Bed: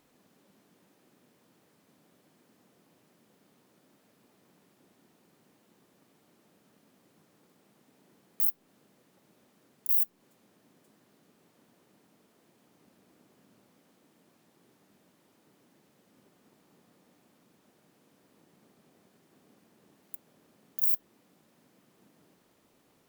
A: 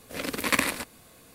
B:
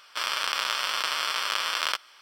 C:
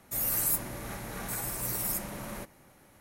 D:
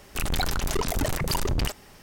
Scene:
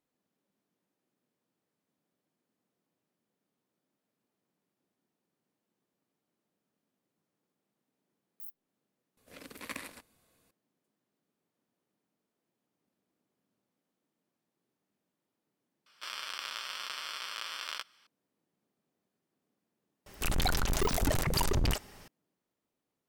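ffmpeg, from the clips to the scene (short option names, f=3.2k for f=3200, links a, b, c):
-filter_complex "[0:a]volume=-19.5dB[a];[2:a]equalizer=f=770:t=o:w=1.7:g=-4[b];[a]asplit=2[c][d];[c]atrim=end=9.174[e];[1:a]atrim=end=1.34,asetpts=PTS-STARTPTS,volume=-17.5dB[f];[d]atrim=start=10.506[g];[b]atrim=end=2.21,asetpts=PTS-STARTPTS,volume=-11dB,afade=t=in:d=0.004:c=hsin,afade=t=out:st=2.206:d=0.004:c=hsin,adelay=15860[h];[4:a]atrim=end=2.02,asetpts=PTS-STARTPTS,volume=-3dB,afade=t=in:d=0.004:c=hsin,afade=t=out:st=2.016:d=0.004:c=hsin,adelay=20060[i];[e][f]acrossfade=d=0.004:c1=hsin:c2=hsin[j];[j][g]acrossfade=d=0.004:c1=hsin:c2=hsin[k];[k][h][i]amix=inputs=3:normalize=0"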